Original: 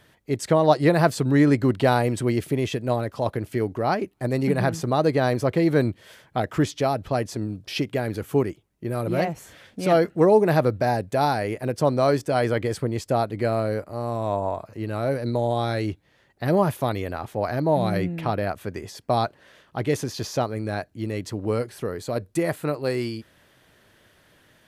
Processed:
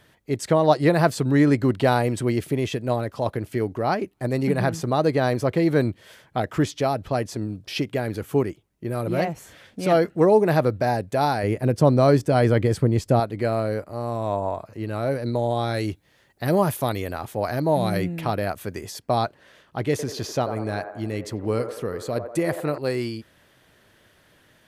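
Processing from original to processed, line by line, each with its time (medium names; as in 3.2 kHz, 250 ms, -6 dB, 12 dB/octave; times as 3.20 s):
11.43–13.20 s: bass shelf 330 Hz +9 dB
15.74–18.99 s: treble shelf 5.8 kHz +9.5 dB
19.90–22.78 s: feedback echo behind a band-pass 90 ms, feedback 53%, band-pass 770 Hz, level -7 dB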